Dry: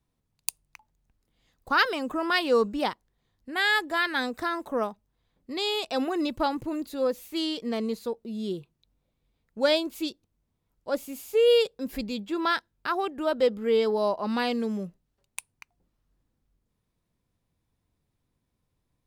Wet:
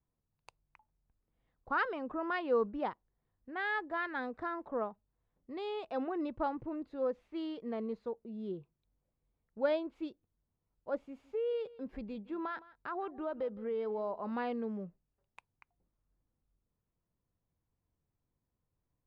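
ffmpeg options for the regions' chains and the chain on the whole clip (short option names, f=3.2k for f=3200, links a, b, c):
-filter_complex "[0:a]asettb=1/sr,asplit=3[a][b][c];[a]atrim=end=11.074[d];[b]atrim=start=11.07:end=14.32,asetpts=PTS-STARTPTS,afade=t=in:d=0.004:c=qsin,afade=t=out:st=3.246:d=0.004:c=qsin,acompressor=threshold=-26dB:ratio=3:attack=3.2:release=140:knee=1:detection=peak,aecho=1:1:163:0.106,atrim=end_sample=143325[e];[c]atrim=start=14.316[f];[d][e]acrossfade=d=0.004:c1=hsin:c2=qsin[g];[g][f]acrossfade=d=0.004:c1=qsin:c2=hsin,lowpass=1.5k,equalizer=f=240:w=1.5:g=-2.5,volume=-7dB"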